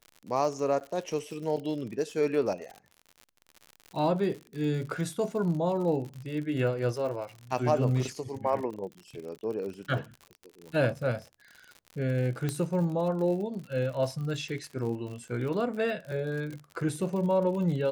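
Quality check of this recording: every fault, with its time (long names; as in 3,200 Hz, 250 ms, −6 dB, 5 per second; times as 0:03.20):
surface crackle 69 per second −37 dBFS
0:00.80–0:00.81: drop-out 9.4 ms
0:12.49: click −17 dBFS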